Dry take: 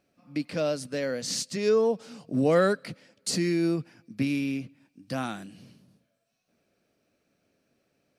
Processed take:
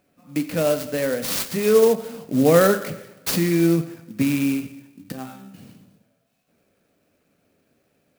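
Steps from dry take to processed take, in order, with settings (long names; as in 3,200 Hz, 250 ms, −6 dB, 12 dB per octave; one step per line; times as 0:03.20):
0:05.12–0:05.54: resonators tuned to a chord C3 fifth, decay 0.36 s
coupled-rooms reverb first 0.89 s, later 3.3 s, from −27 dB, DRR 8 dB
converter with an unsteady clock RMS 0.046 ms
level +6 dB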